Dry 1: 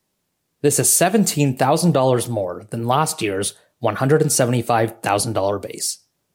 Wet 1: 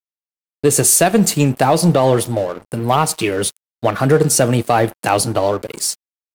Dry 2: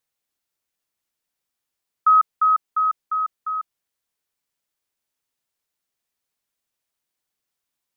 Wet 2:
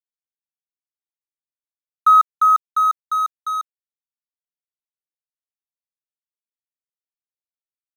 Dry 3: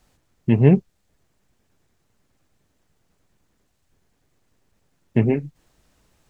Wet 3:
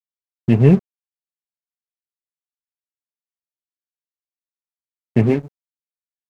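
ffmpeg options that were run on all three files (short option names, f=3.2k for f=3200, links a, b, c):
-af "highpass=50,acontrast=48,aeval=exprs='sgn(val(0))*max(abs(val(0))-0.0282,0)':c=same,volume=-1dB"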